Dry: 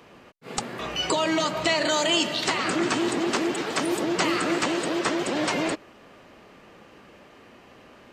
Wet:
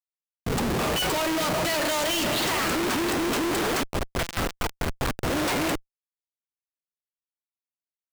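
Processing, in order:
0:03.83–0:05.31: one-pitch LPC vocoder at 8 kHz 170 Hz
comparator with hysteresis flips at −35 dBFS
level +2 dB

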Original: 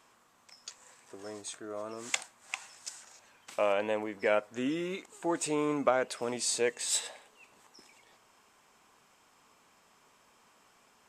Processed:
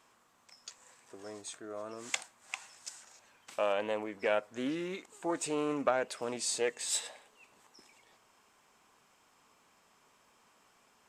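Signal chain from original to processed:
highs frequency-modulated by the lows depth 0.15 ms
level −2.5 dB

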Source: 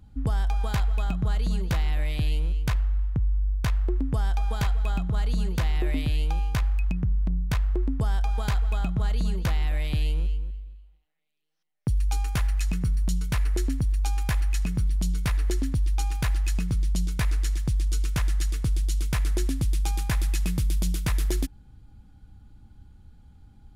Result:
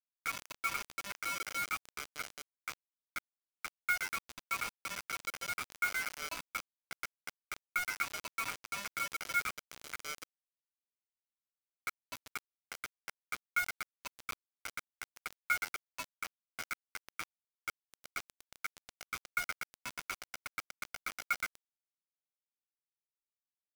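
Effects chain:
in parallel at −1 dB: brickwall limiter −26 dBFS, peak gain reduction 9.5 dB
on the sum: flat-topped band-pass 430 Hz, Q 2.2
spectral tilt +3.5 dB per octave
comb filter 7.4 ms, depth 67%
on a send: single-tap delay 236 ms −23 dB
on the sum: multi-voice chorus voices 2, 0.75 Hz, delay 11 ms, depth 2.5 ms
ring modulation 1,800 Hz
rectangular room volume 2,800 cubic metres, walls mixed, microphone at 0.58 metres
bit-depth reduction 8 bits, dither none
level +11 dB

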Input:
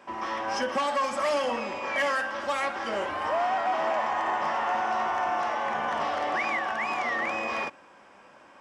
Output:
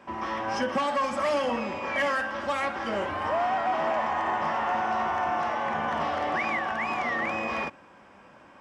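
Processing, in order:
bass and treble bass +9 dB, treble −4 dB

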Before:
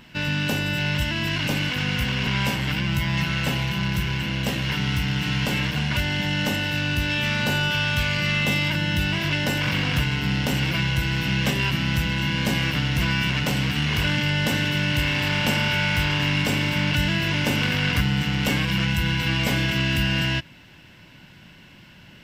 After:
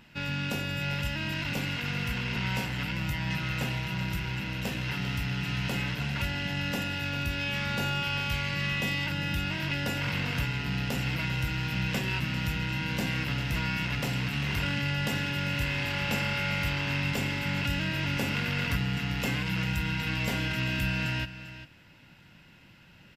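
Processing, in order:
single-tap delay 381 ms −13.5 dB
wrong playback speed 25 fps video run at 24 fps
level −7.5 dB

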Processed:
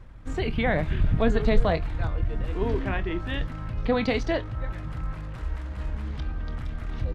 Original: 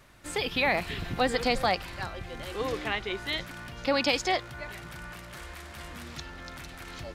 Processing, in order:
RIAA equalisation playback
pitch shifter −2 semitones
double-tracking delay 26 ms −13 dB

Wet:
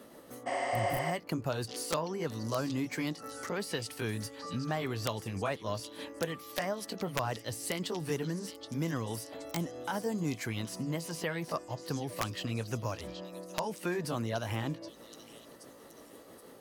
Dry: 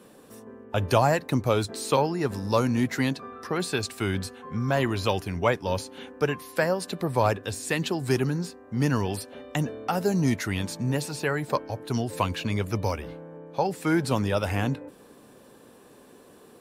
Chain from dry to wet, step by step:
pitch shift by two crossfaded delay taps +2 semitones
downward compressor 2 to 1, threshold −37 dBFS, peak gain reduction 12 dB
wrap-around overflow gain 20 dB
on a send: echo through a band-pass that steps 774 ms, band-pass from 4,500 Hz, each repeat 0.7 octaves, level −6.5 dB
on the sum: healed spectral selection 0:00.49–0:01.09, 380–10,000 Hz after

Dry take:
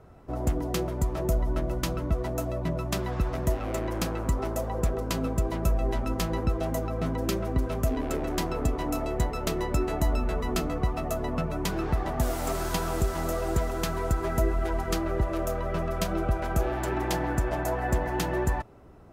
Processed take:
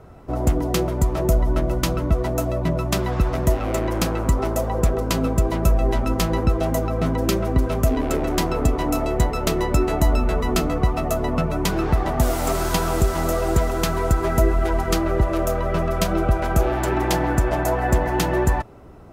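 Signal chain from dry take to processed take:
notch filter 1,700 Hz, Q 26
level +7.5 dB

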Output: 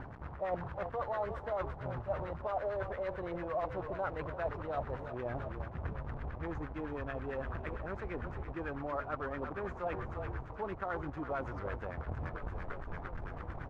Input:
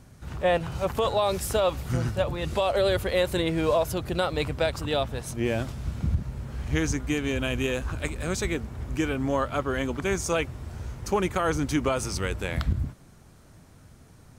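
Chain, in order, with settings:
in parallel at −4.5 dB: sample-and-hold swept by an LFO 12×, swing 100% 0.2 Hz
on the sum: speed change +5%
echo with shifted repeats 349 ms, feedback 58%, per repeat −33 Hz, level −12 dB
reversed playback
downward compressor 8 to 1, threshold −41 dBFS, peak gain reduction 24.5 dB
reversed playback
dynamic equaliser 220 Hz, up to −5 dB, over −57 dBFS, Q 1.2
log-companded quantiser 4 bits
auto-filter low-pass sine 8.9 Hz 750–1,700 Hz
level +3.5 dB

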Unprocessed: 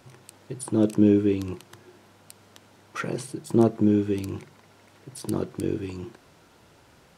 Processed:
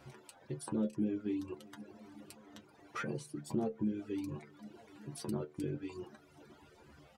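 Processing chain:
in parallel at −10 dB: asymmetric clip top −15.5 dBFS
on the sum: high-shelf EQ 4,300 Hz −7.5 dB
stiff-string resonator 72 Hz, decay 0.26 s, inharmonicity 0.002
on a send: repeating echo 387 ms, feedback 55%, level −21.5 dB
on the sum: reverb reduction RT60 1 s
downward compressor 2 to 1, threshold −43 dBFS, peak gain reduction 12.5 dB
level +3 dB

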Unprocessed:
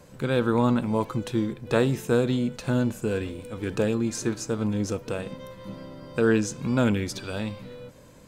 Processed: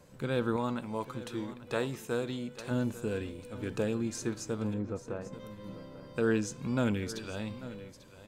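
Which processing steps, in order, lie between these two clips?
0:00.56–0:02.71: low-shelf EQ 390 Hz −7.5 dB
0:04.74–0:05.33: Chebyshev low-pass filter 1,300 Hz, order 2
on a send: single-tap delay 843 ms −15.5 dB
on the sum: level −7 dB

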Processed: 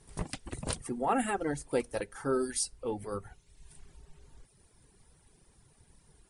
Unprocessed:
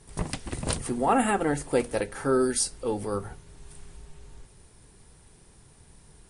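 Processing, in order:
reverb reduction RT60 1 s
level −5.5 dB

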